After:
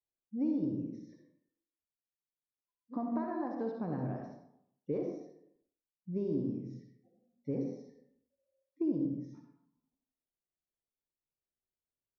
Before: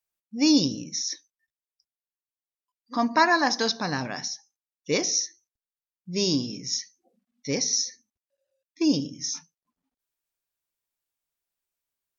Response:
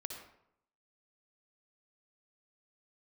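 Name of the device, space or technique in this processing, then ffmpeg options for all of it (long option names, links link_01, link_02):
television next door: -filter_complex "[0:a]acompressor=threshold=-26dB:ratio=4,lowpass=530[link_01];[1:a]atrim=start_sample=2205[link_02];[link_01][link_02]afir=irnorm=-1:irlink=0"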